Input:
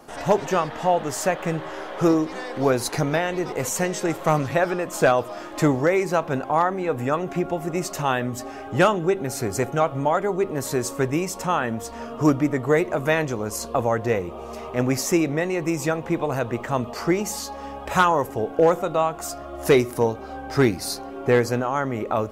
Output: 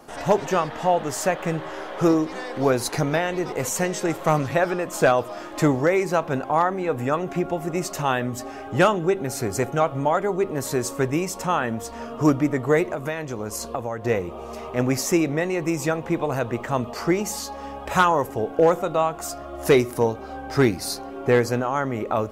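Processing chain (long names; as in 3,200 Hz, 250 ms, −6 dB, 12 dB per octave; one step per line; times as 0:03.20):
0:12.89–0:14.05: downward compressor 6 to 1, threshold −25 dBFS, peak gain reduction 9.5 dB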